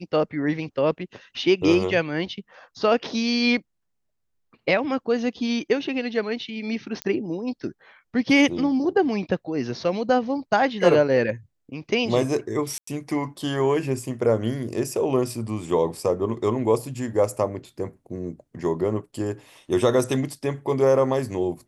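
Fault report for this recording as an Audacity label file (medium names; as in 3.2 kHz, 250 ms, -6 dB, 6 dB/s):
7.020000	7.020000	pop -13 dBFS
12.780000	12.870000	dropout 94 ms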